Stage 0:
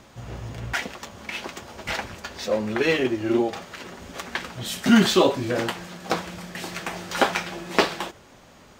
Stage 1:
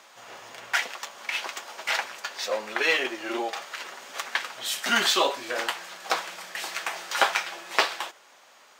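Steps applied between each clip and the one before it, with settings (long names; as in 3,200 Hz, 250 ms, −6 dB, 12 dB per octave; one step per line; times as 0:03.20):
high-pass filter 780 Hz 12 dB per octave
in parallel at −1 dB: speech leveller 2 s
on the sum: level −4.5 dB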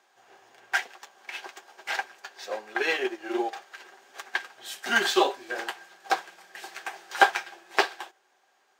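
hollow resonant body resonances 380/760/1,600 Hz, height 12 dB, ringing for 45 ms
expander for the loud parts 1.5 to 1, over −40 dBFS
level −1 dB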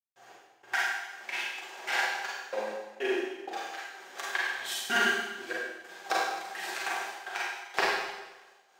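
downward compressor 2 to 1, threshold −32 dBFS, peak gain reduction 11.5 dB
gate pattern ".x..x..xx.xxxxx" 95 BPM −60 dB
four-comb reverb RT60 1.1 s, combs from 33 ms, DRR −5.5 dB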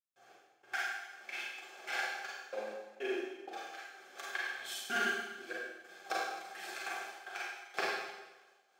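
notch comb filter 950 Hz
level −6.5 dB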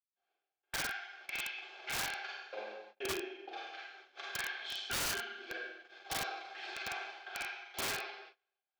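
loudspeaker in its box 470–4,300 Hz, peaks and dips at 530 Hz −7 dB, 760 Hz −4 dB, 1,200 Hz −7 dB, 1,800 Hz −7 dB
wrap-around overflow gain 34.5 dB
noise gate −59 dBFS, range −25 dB
level +4.5 dB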